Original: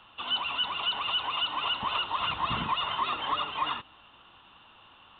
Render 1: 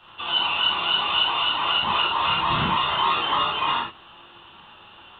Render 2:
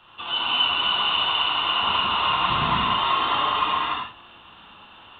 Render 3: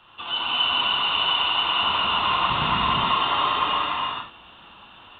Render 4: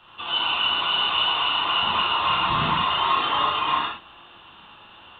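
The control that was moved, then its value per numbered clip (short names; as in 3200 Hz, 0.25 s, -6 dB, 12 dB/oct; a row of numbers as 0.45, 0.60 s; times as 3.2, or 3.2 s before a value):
non-linear reverb, gate: 0.12, 0.33, 0.51, 0.2 s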